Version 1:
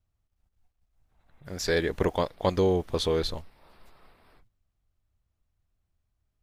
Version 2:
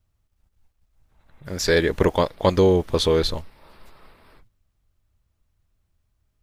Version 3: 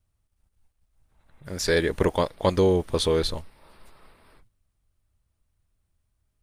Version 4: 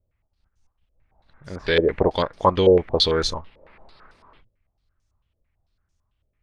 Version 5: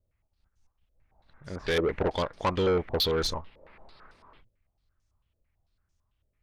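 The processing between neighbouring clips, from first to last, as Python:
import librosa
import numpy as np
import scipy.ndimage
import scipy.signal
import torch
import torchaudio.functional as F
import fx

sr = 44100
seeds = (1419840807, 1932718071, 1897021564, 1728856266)

y1 = fx.notch(x, sr, hz=730.0, q=12.0)
y1 = y1 * librosa.db_to_amplitude(7.0)
y2 = fx.peak_eq(y1, sr, hz=9200.0, db=10.0, octaves=0.23)
y2 = y2 * librosa.db_to_amplitude(-3.5)
y3 = fx.filter_held_lowpass(y2, sr, hz=9.0, low_hz=530.0, high_hz=6200.0)
y4 = 10.0 ** (-18.0 / 20.0) * np.tanh(y3 / 10.0 ** (-18.0 / 20.0))
y4 = y4 * librosa.db_to_amplitude(-3.0)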